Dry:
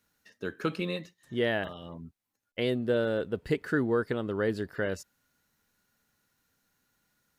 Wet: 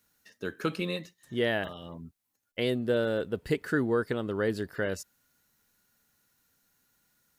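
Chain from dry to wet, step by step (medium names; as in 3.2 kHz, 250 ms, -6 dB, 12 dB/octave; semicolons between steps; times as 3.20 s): treble shelf 6.1 kHz +7.5 dB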